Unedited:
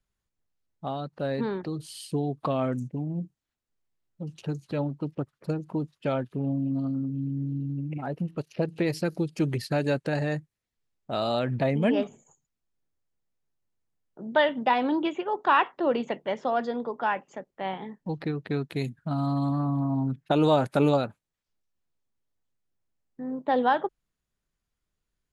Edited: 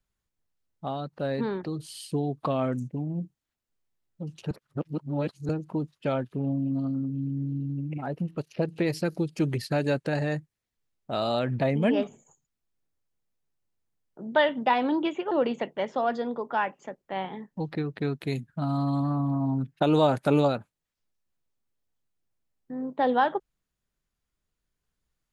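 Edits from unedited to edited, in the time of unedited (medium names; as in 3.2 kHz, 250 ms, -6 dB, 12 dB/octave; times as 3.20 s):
4.51–5.49 s: reverse
15.31–15.80 s: delete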